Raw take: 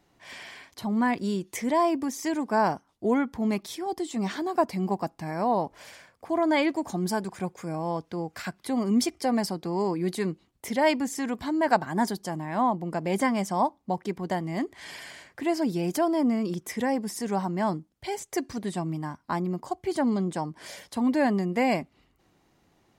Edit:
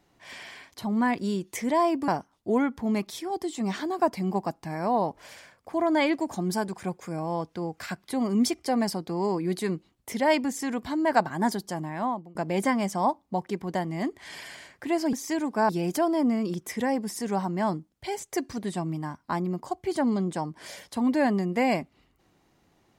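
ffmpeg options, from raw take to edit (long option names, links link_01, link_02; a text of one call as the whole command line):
ffmpeg -i in.wav -filter_complex "[0:a]asplit=5[link_01][link_02][link_03][link_04][link_05];[link_01]atrim=end=2.082[link_06];[link_02]atrim=start=2.638:end=12.91,asetpts=PTS-STARTPTS,afade=type=out:start_time=9.802:duration=0.47:silence=0.0668344[link_07];[link_03]atrim=start=12.91:end=15.692,asetpts=PTS-STARTPTS,afade=type=in:duration=0.004:curve=hsin:silence=0.0668344[link_08];[link_04]atrim=start=2.078:end=2.642[link_09];[link_05]atrim=start=15.688[link_10];[link_07][link_08]concat=n=2:v=0:a=1[link_11];[link_06][link_11]acrossfade=duration=0.004:curve1=hsin:curve2=hsin[link_12];[link_12][link_09]acrossfade=duration=0.004:curve1=hsin:curve2=hsin[link_13];[link_13][link_10]acrossfade=duration=0.004:curve1=hsin:curve2=hsin" out.wav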